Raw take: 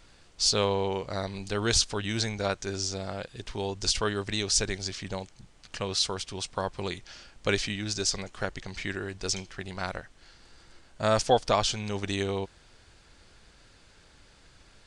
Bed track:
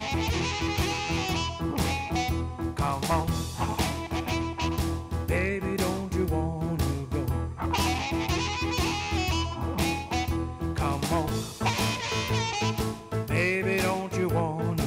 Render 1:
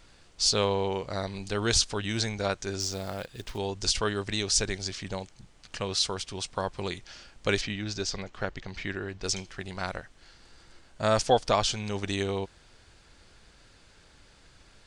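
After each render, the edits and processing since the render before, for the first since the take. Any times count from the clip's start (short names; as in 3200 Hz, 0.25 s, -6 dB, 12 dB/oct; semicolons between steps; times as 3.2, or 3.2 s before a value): 2.8–3.58 short-mantissa float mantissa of 2-bit; 7.61–9.24 air absorption 100 m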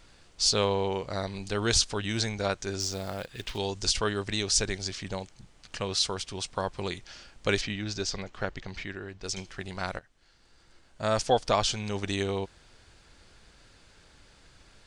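3.3–3.8 bell 1700 Hz -> 7600 Hz +8 dB 1.3 oct; 8.84–9.37 gain -4.5 dB; 9.99–11.67 fade in, from -13 dB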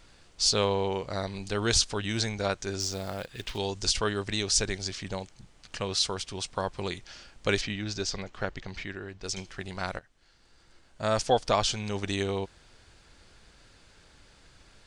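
nothing audible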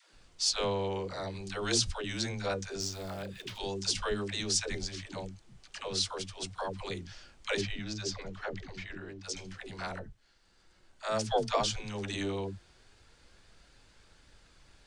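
dispersion lows, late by 0.139 s, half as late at 330 Hz; flange 0.14 Hz, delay 0.5 ms, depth 5 ms, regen +84%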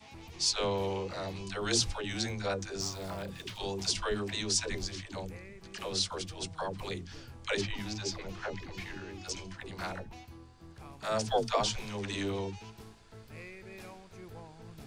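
add bed track -22 dB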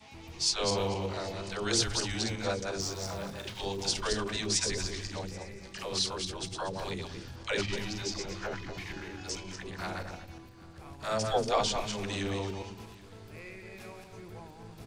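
regenerating reverse delay 0.118 s, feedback 43%, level -4 dB; echo 0.783 s -22.5 dB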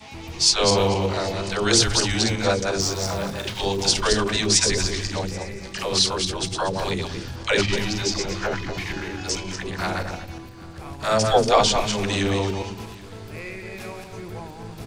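gain +11 dB; limiter -3 dBFS, peak gain reduction 2 dB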